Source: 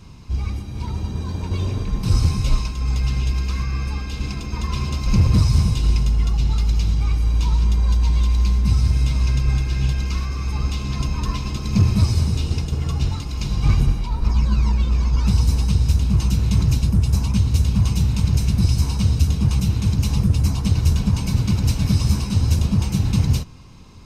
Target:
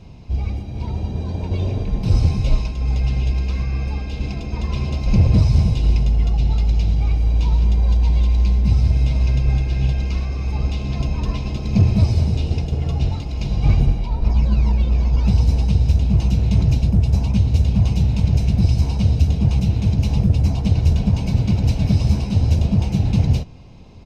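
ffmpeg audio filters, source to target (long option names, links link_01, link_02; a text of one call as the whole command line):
ffmpeg -i in.wav -af "firequalizer=gain_entry='entry(320,0);entry(680,7);entry(1100,-9);entry(2400,-2);entry(9200,-15)':delay=0.05:min_phase=1,volume=1.5dB" out.wav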